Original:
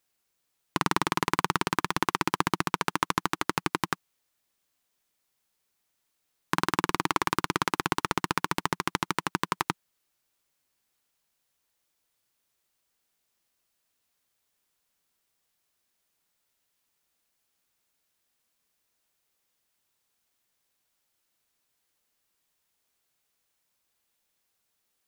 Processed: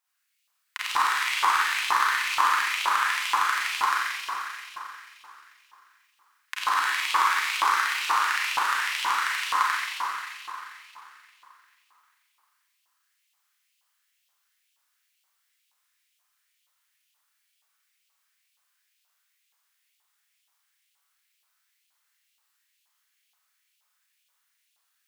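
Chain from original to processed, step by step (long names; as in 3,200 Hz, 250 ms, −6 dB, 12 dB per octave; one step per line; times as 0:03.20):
four-comb reverb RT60 3.4 s, combs from 30 ms, DRR −9 dB
auto-filter high-pass saw up 2.1 Hz 920–2,900 Hz
level −6.5 dB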